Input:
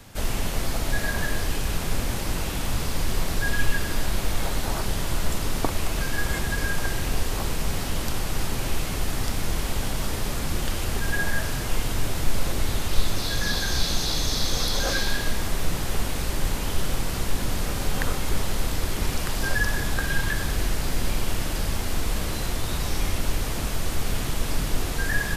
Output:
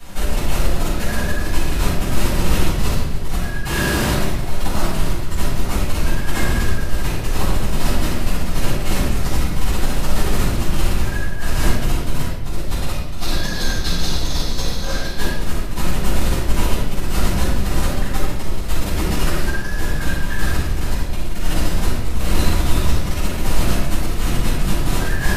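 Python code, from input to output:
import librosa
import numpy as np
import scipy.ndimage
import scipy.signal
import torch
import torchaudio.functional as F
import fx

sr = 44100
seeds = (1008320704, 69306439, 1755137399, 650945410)

y = fx.highpass(x, sr, hz=78.0, slope=12, at=(3.65, 4.14))
y = fx.over_compress(y, sr, threshold_db=-27.0, ratio=-0.5)
y = fx.room_shoebox(y, sr, seeds[0], volume_m3=490.0, walls='mixed', distance_m=7.6)
y = y * 10.0 ** (-9.5 / 20.0)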